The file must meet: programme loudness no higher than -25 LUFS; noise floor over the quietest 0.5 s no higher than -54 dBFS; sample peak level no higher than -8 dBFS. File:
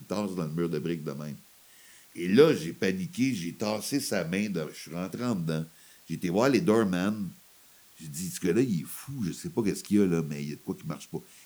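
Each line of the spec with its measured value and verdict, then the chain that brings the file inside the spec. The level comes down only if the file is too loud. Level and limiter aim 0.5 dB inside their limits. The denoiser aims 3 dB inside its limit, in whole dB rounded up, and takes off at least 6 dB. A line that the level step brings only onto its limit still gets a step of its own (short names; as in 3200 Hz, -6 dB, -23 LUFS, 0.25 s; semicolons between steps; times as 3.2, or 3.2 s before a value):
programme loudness -29.0 LUFS: OK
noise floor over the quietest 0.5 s -57 dBFS: OK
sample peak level -6.0 dBFS: fail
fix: limiter -8.5 dBFS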